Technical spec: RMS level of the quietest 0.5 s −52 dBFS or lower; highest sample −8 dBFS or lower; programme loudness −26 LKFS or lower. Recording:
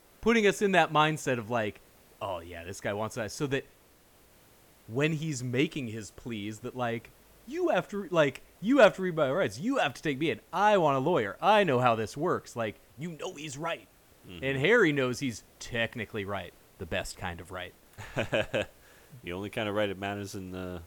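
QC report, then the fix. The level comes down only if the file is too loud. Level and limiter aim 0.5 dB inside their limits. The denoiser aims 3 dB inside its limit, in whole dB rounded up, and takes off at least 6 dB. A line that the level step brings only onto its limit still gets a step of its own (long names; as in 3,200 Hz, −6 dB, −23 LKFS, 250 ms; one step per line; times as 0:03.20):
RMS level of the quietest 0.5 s −60 dBFS: in spec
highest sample −9.5 dBFS: in spec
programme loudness −29.5 LKFS: in spec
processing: no processing needed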